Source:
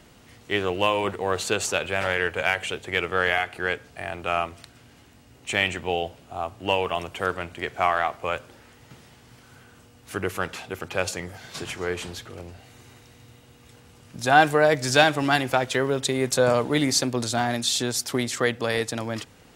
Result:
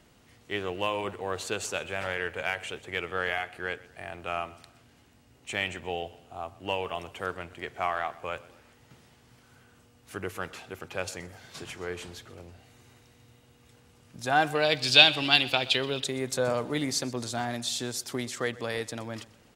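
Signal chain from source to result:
0:14.55–0:16.04: flat-topped bell 3,400 Hz +15.5 dB 1.2 octaves
on a send: repeating echo 125 ms, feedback 46%, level −20.5 dB
on the sum: level −7.5 dB

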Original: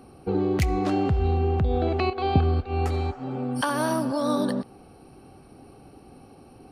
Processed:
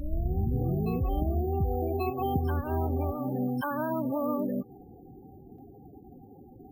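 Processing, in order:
turntable start at the beginning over 1.54 s
downward compressor 3 to 1, threshold −27 dBFS, peak gain reduction 9.5 dB
spectral peaks only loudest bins 16
bad sample-rate conversion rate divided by 3×, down none, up hold
on a send: backwards echo 1,135 ms −6.5 dB

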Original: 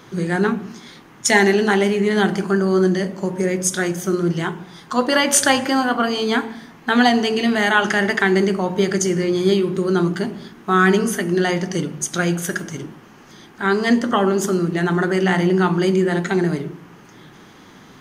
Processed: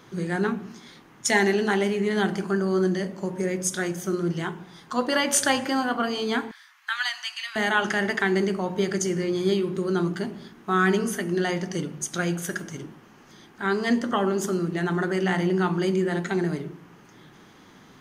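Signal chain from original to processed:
0:06.51–0:07.56: inverse Chebyshev high-pass filter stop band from 470 Hz, stop band 50 dB
level −6.5 dB

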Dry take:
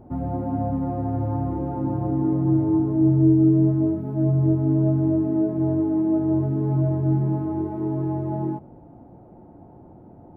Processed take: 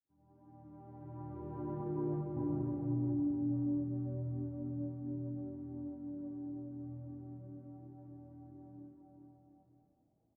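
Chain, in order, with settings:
fade in at the beginning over 2.01 s
source passing by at 0:02.31, 36 m/s, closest 1.9 metres
compressor whose output falls as the input rises −33 dBFS, ratio −0.5
brickwall limiter −36.5 dBFS, peak gain reduction 14.5 dB
bouncing-ball delay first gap 400 ms, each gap 0.75×, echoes 5
level +4.5 dB

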